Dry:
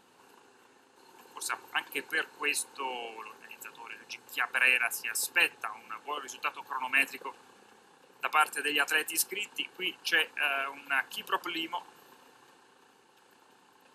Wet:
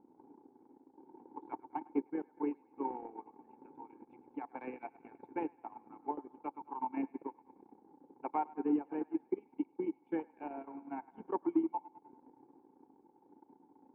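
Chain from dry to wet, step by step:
formant resonators in series u
delay with a band-pass on its return 102 ms, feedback 54%, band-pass 1,300 Hz, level −10 dB
transient designer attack +6 dB, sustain −10 dB
level +9.5 dB

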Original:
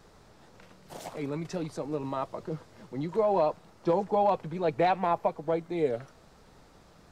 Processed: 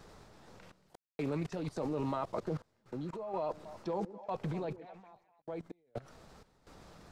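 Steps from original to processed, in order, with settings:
0:02.88–0:03.38: healed spectral selection 1,100–2,800 Hz both
output level in coarse steps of 21 dB
sample-and-hold tremolo 4.2 Hz, depth 100%
0:03.40–0:05.42: echo through a band-pass that steps 126 ms, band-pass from 300 Hz, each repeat 1.4 octaves, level −9 dB
highs frequency-modulated by the lows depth 0.13 ms
level +8.5 dB

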